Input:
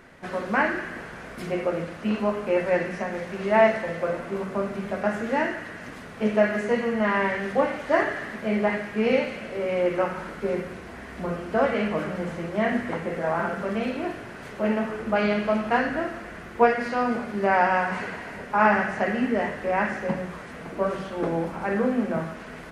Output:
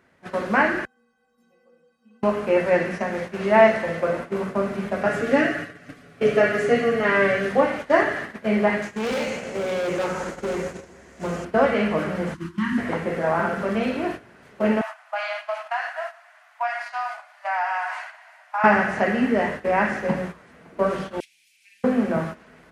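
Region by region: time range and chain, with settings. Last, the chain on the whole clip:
0.85–2.23 bell 2100 Hz -11.5 dB 0.46 oct + metallic resonator 230 Hz, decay 0.59 s, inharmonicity 0.03
5.06–7.49 Butterworth band-stop 930 Hz, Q 4.1 + low shelf 350 Hz +2.5 dB + comb 7 ms, depth 79%
8.82–11.45 bell 6800 Hz +14.5 dB 0.73 oct + hard clip -27 dBFS + analogue delay 0.164 s, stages 1024, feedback 69%, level -8.5 dB
12.34–12.78 Chebyshev band-stop 350–930 Hz, order 5 + bell 2200 Hz -9 dB 0.43 oct
14.81–18.64 steep high-pass 630 Hz 96 dB/oct + compressor 2:1, threshold -30 dBFS
21.2–21.84 elliptic high-pass 2400 Hz, stop band 50 dB + high shelf 3900 Hz +7.5 dB
whole clip: gate -33 dBFS, range -14 dB; HPF 47 Hz; gain +3.5 dB

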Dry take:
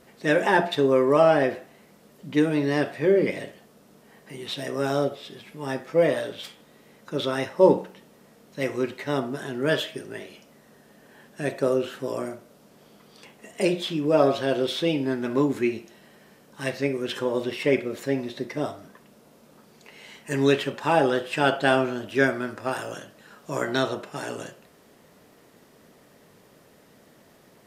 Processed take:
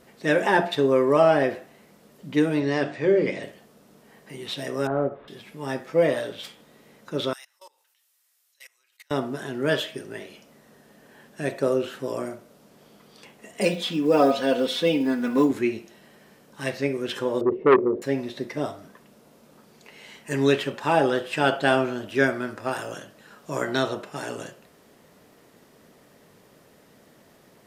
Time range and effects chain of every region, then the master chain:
2.6–3.43 steep low-pass 8100 Hz 48 dB/oct + notches 50/100/150/200/250/300/350 Hz
4.87–5.28 CVSD 32 kbps + LPF 1600 Hz 24 dB/oct
7.33–9.11 HPF 1000 Hz + differentiator + level quantiser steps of 23 dB
13.61–15.51 block floating point 7-bit + comb 4.1 ms, depth 76%
17.41–18.02 G.711 law mismatch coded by mu + synth low-pass 410 Hz, resonance Q 3.3 + core saturation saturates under 1000 Hz
whole clip: dry

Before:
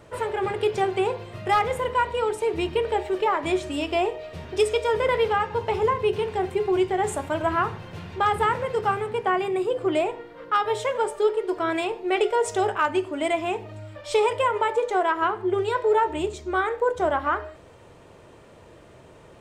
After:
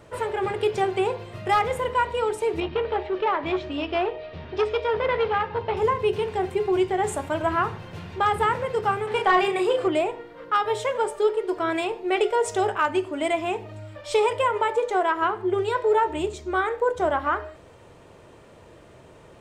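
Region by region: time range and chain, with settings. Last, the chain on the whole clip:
2.6–5.77 LPF 4400 Hz 24 dB/oct + core saturation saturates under 740 Hz
9.07–9.88 high shelf 2900 Hz +8.5 dB + doubler 33 ms -4 dB + overdrive pedal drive 11 dB, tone 2900 Hz, clips at -8.5 dBFS
whole clip: dry

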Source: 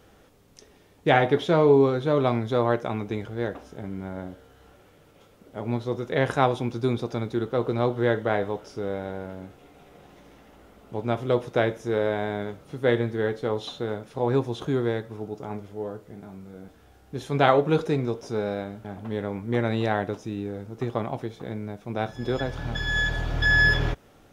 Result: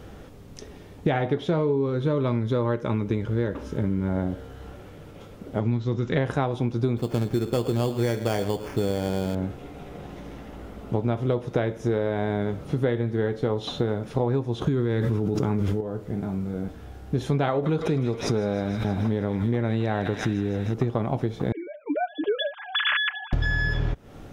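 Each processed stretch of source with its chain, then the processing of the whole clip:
1.58–4.09 Butterworth band-stop 720 Hz, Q 4 + short-mantissa float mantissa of 8-bit
5.6–6.17 steep low-pass 7700 Hz 96 dB/oct + bell 620 Hz -11 dB 1.3 oct
6.97–9.35 sample-rate reducer 3900 Hz + echo 0.11 s -16 dB
14.67–15.81 bell 680 Hz -9 dB 0.66 oct + fast leveller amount 100%
17.5–20.74 thin delay 0.158 s, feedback 69%, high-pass 2000 Hz, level -5.5 dB + backwards sustainer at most 77 dB/s
21.52–23.33 sine-wave speech + comb 6.7 ms, depth 64%
whole clip: low shelf 320 Hz +8.5 dB; compressor 12:1, threshold -28 dBFS; high shelf 6300 Hz -4.5 dB; gain +7.5 dB

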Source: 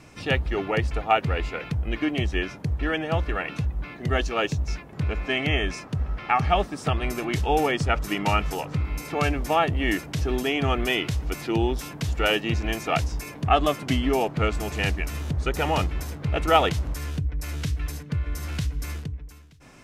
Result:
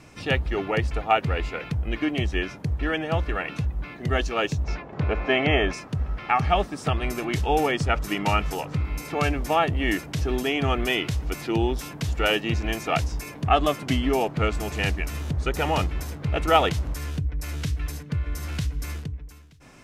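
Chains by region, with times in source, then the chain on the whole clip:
4.64–5.73 LPF 4700 Hz + bell 680 Hz +8 dB 2.3 oct
whole clip: dry

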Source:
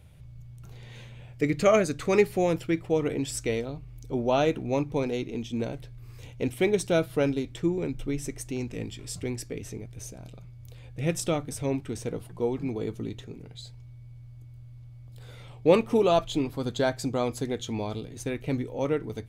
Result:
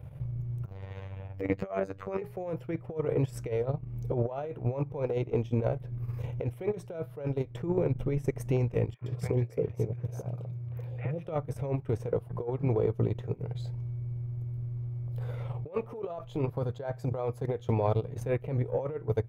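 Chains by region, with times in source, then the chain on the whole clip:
0.65–2.22 bell 11000 Hz -9 dB 1 oct + robotiser 96.4 Hz
8.94–11.27 HPF 100 Hz + bell 9400 Hz -6 dB 1.9 oct + three bands offset in time mids, lows, highs 70/120 ms, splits 740/2800 Hz
whole clip: ten-band EQ 125 Hz +12 dB, 250 Hz -8 dB, 500 Hz +10 dB, 1000 Hz +6 dB, 4000 Hz -8 dB, 8000 Hz -11 dB; transient shaper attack +5 dB, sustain -12 dB; negative-ratio compressor -25 dBFS, ratio -1; gain -5.5 dB

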